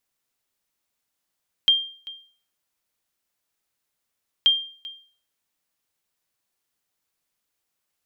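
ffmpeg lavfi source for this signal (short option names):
-f lavfi -i "aevalsrc='0.316*(sin(2*PI*3190*mod(t,2.78))*exp(-6.91*mod(t,2.78)/0.45)+0.1*sin(2*PI*3190*max(mod(t,2.78)-0.39,0))*exp(-6.91*max(mod(t,2.78)-0.39,0)/0.45))':d=5.56:s=44100"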